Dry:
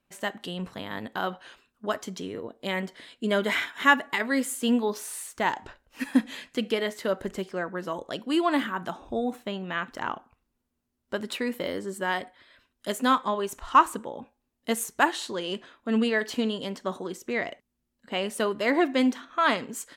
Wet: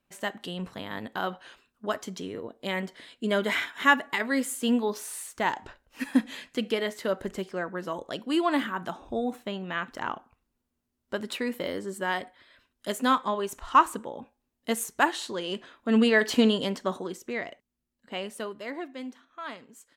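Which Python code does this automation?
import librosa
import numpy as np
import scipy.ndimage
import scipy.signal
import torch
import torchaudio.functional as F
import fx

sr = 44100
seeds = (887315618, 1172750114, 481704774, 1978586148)

y = fx.gain(x, sr, db=fx.line((15.48, -1.0), (16.46, 6.5), (17.47, -5.0), (18.18, -5.0), (18.92, -15.5)))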